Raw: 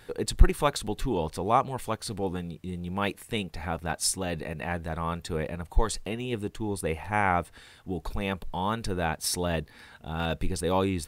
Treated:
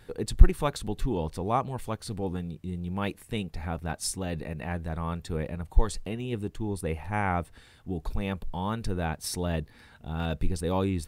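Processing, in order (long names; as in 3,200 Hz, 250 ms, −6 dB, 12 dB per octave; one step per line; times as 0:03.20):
low-shelf EQ 300 Hz +8 dB
level −5 dB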